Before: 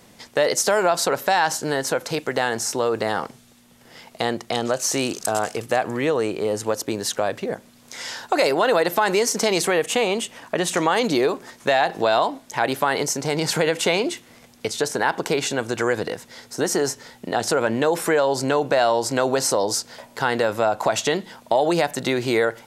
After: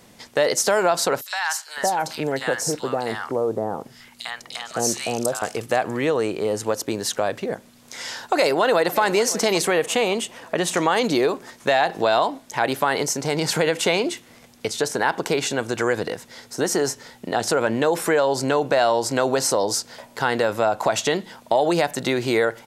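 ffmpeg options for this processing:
-filter_complex "[0:a]asettb=1/sr,asplit=3[a][b][c];[a]atrim=end=1.214[d];[b]atrim=start=1.21:end=5.42,asetpts=PTS-STARTPTS,afade=t=in:d=0.004:c=qsin,afade=t=out:st=4.206:d=0.004:c=qsin,acrossover=split=1000|3300[e][f][g];[f]adelay=50[h];[e]adelay=560[i];[i][h][g]amix=inputs=3:normalize=0,atrim=end_sample=185661[j];[c]atrim=start=5.416[k];[d][j]acrossfade=d=0.004:c1=hsin:c2=qsin[l];[l][k]acrossfade=d=0.004:c1=qsin:c2=hsin,asplit=2[m][n];[n]afade=t=in:st=8.29:d=0.01,afade=t=out:st=9:d=0.01,aecho=0:1:570|1140|1710|2280:0.16788|0.0671522|0.0268609|0.0107443[o];[m][o]amix=inputs=2:normalize=0"

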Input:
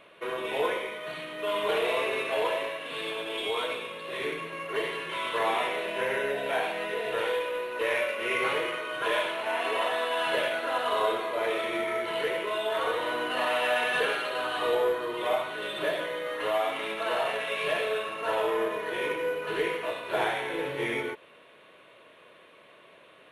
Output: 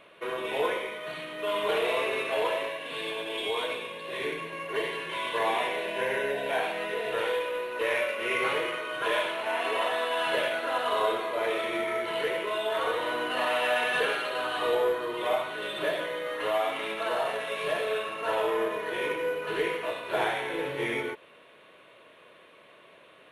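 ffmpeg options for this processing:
-filter_complex "[0:a]asettb=1/sr,asplit=3[a][b][c];[a]atrim=end=2.684[d];[b]atrim=start=2.68:end=6.59,asetpts=PTS-STARTPTS,afade=t=in:d=0.004:c=qsin,afade=t=out:st=3.906:d=0.004:c=qsin,asuperstop=centerf=1300:order=4:qfactor=7.8[e];[c]atrim=start=6.586[f];[d][e]acrossfade=d=0.004:c1=hsin:c2=qsin[g];[g][f]acrossfade=d=0.004:c1=qsin:c2=hsin,asettb=1/sr,asplit=3[h][i][j];[h]atrim=end=17.084[k];[i]atrim=start=17.08:end=17.88,asetpts=PTS-STARTPTS,afade=t=in:d=0.004:c=qsin,afade=t=out:st=0.796:d=0.004:c=qsin,equalizer=f=2.5k:w=1.5:g=-4.5[l];[j]atrim=start=17.876[m];[k][l]acrossfade=d=0.004:c1=hsin:c2=qsin[n];[n][m]acrossfade=d=0.004:c1=qsin:c2=hsin"

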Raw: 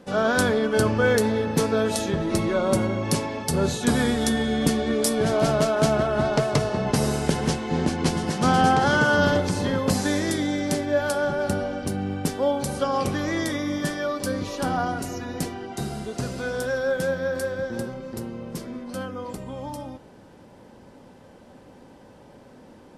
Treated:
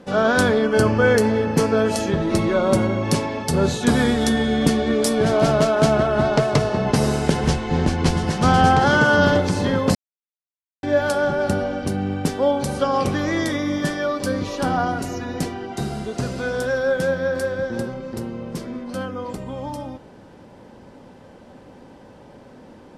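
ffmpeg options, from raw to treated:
-filter_complex "[0:a]asettb=1/sr,asplit=3[a][b][c];[a]atrim=end=0.624[d];[b]atrim=start=0.62:end=2.12,asetpts=PTS-STARTPTS,afade=t=in:d=0.004:c=qsin,afade=t=out:st=1.496:d=0.004:c=qsin,bandreject=f=3.7k:w=5.9[e];[c]atrim=start=2.116[f];[d][e]acrossfade=d=0.004:c1=hsin:c2=qsin[g];[g][f]acrossfade=d=0.004:c1=qsin:c2=hsin,asplit=3[h][i][j];[h]afade=t=out:st=7.43:d=0.02[k];[i]asubboost=boost=3:cutoff=110,afade=t=in:st=7.43:d=0.02,afade=t=out:st=8.8:d=0.02[l];[j]afade=t=in:st=8.8:d=0.02[m];[k][l][m]amix=inputs=3:normalize=0,asplit=3[n][o][p];[n]atrim=end=9.95,asetpts=PTS-STARTPTS,afade=t=out:st=9.946:d=0.004:c=hsin[q];[o]atrim=start=9.95:end=10.83,asetpts=PTS-STARTPTS,volume=0[r];[p]atrim=start=10.83,asetpts=PTS-STARTPTS,afade=t=in:d=0.004:c=hsin[s];[q][r][s]concat=n=3:v=0:a=1,highshelf=f=8.9k:g=-9.5,volume=4dB"

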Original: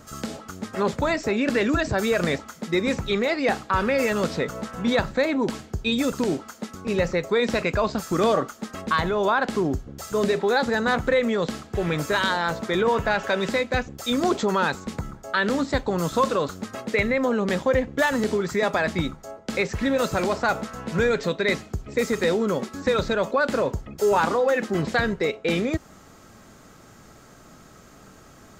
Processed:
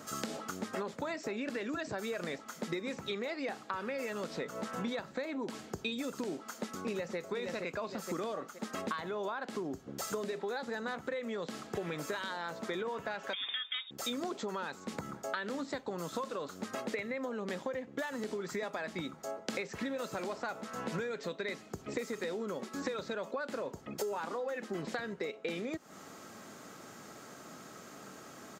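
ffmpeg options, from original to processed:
-filter_complex "[0:a]asplit=2[a][b];[b]afade=t=in:st=6.47:d=0.01,afade=t=out:st=7.17:d=0.01,aecho=0:1:470|940|1410|1880|2350:0.749894|0.262463|0.091862|0.0321517|0.0112531[c];[a][c]amix=inputs=2:normalize=0,asettb=1/sr,asplit=3[d][e][f];[d]atrim=end=13.334[g];[e]atrim=start=13.33:end=13.91,asetpts=PTS-STARTPTS,afade=t=in:d=0.004:c=qsin,afade=t=out:st=0.576:d=0.004:c=qsin,lowpass=f=3.2k:t=q:w=0.5098,lowpass=f=3.2k:t=q:w=0.6013,lowpass=f=3.2k:t=q:w=0.9,lowpass=f=3.2k:t=q:w=2.563,afreqshift=-3800[h];[f]atrim=start=13.906[i];[g][h]acrossfade=d=0.004:c1=hsin:c2=qsin[j];[j][i]acrossfade=d=0.004:c1=qsin:c2=hsin,highpass=200,acompressor=threshold=-34dB:ratio=16"

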